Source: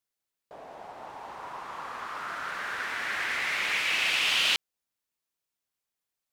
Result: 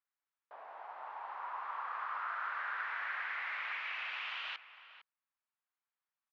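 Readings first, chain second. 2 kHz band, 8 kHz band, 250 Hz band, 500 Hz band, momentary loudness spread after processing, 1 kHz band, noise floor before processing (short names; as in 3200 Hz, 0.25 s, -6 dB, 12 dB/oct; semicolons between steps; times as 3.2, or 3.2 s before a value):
-10.0 dB, under -35 dB, under -25 dB, -12.5 dB, 15 LU, -3.5 dB, under -85 dBFS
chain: compressor 3:1, threshold -35 dBFS, peak gain reduction 10.5 dB; ladder band-pass 1400 Hz, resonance 25%; air absorption 130 m; outdoor echo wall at 78 m, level -13 dB; gain +10 dB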